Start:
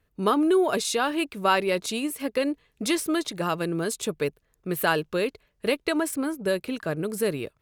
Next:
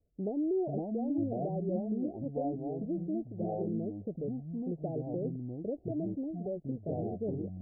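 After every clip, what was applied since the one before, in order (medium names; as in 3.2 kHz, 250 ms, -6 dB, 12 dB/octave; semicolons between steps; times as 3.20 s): dynamic bell 550 Hz, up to -6 dB, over -35 dBFS, Q 0.7; ever faster or slower copies 424 ms, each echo -5 st, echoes 2; steep low-pass 740 Hz 96 dB/octave; trim -6 dB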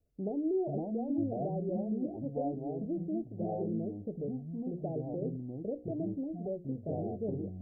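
hum notches 60/120/180/240/300/360/420/480/540 Hz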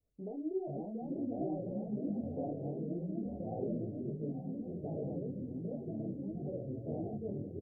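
on a send: multi-tap echo 851/883 ms -17.5/-12 dB; on the sum: ever faster or slower copies 792 ms, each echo -3 st, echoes 2; detune thickener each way 49 cents; trim -2.5 dB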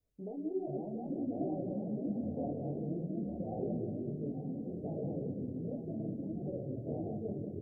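filtered feedback delay 183 ms, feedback 57%, low-pass 800 Hz, level -7 dB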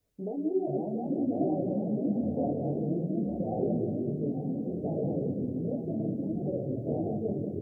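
bass shelf 67 Hz -9.5 dB; trim +8 dB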